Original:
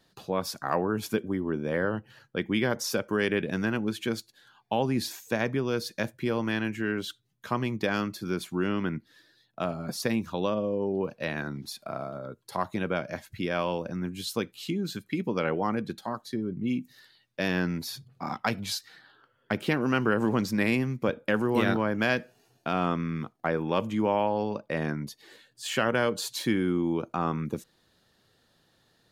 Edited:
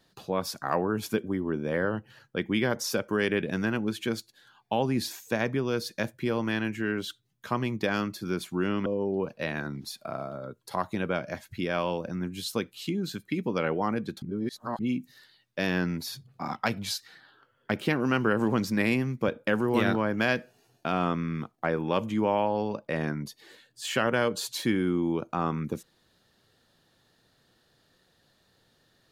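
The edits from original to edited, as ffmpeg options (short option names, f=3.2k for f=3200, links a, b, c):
-filter_complex "[0:a]asplit=4[a][b][c][d];[a]atrim=end=8.862[e];[b]atrim=start=10.668:end=16.032[f];[c]atrim=start=16.028:end=16.602,asetpts=PTS-STARTPTS,areverse[g];[d]atrim=start=16.598[h];[e][f]acrossfade=d=0.004:c1=hsin:c2=hsin[i];[i][g]acrossfade=d=0.004:c1=hsin:c2=hsin[j];[j][h]acrossfade=d=0.004:c1=hsin:c2=hsin"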